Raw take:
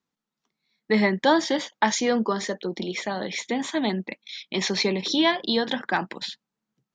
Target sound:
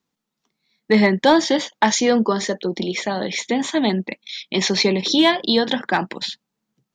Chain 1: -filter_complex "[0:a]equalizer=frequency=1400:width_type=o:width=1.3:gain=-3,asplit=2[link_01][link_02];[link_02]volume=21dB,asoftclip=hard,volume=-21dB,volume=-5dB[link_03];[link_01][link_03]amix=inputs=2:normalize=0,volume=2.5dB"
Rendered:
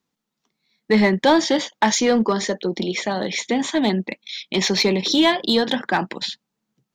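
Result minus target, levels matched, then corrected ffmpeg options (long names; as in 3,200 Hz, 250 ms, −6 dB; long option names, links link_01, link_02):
gain into a clipping stage and back: distortion +12 dB
-filter_complex "[0:a]equalizer=frequency=1400:width_type=o:width=1.3:gain=-3,asplit=2[link_01][link_02];[link_02]volume=14dB,asoftclip=hard,volume=-14dB,volume=-5dB[link_03];[link_01][link_03]amix=inputs=2:normalize=0,volume=2.5dB"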